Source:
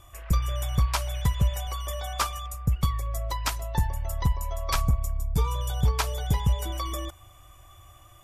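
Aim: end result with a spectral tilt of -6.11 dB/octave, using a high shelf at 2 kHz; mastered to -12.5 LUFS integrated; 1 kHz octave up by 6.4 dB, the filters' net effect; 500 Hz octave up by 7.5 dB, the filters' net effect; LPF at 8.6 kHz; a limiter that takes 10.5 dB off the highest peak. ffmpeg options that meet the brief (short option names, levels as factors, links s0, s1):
-af "lowpass=8600,equalizer=f=500:t=o:g=7.5,equalizer=f=1000:t=o:g=8,highshelf=f=2000:g=-9,volume=7.5,alimiter=limit=0.841:level=0:latency=1"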